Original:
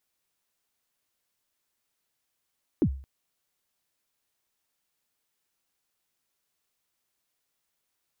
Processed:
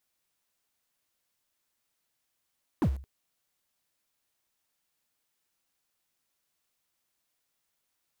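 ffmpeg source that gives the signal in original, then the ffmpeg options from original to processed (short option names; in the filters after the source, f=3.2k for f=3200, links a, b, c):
-f lavfi -i "aevalsrc='0.158*pow(10,-3*t/0.44)*sin(2*PI*(380*0.071/log(67/380)*(exp(log(67/380)*min(t,0.071)/0.071)-1)+67*max(t-0.071,0)))':d=0.22:s=44100"
-filter_complex "[0:a]asplit=2[a][b];[b]acrusher=bits=5:mix=0:aa=0.000001,volume=-11.5dB[c];[a][c]amix=inputs=2:normalize=0,asoftclip=type=hard:threshold=-23dB,bandreject=f=410:w=12"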